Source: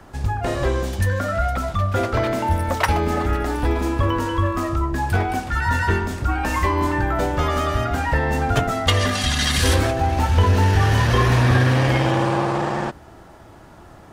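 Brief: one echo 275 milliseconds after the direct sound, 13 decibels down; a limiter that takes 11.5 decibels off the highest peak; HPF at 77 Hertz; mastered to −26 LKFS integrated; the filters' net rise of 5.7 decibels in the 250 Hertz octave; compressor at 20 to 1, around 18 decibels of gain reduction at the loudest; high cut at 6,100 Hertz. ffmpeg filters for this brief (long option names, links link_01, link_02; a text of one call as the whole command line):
ffmpeg -i in.wav -af "highpass=77,lowpass=6100,equalizer=frequency=250:width_type=o:gain=7.5,acompressor=threshold=-29dB:ratio=20,alimiter=level_in=5dB:limit=-24dB:level=0:latency=1,volume=-5dB,aecho=1:1:275:0.224,volume=11.5dB" out.wav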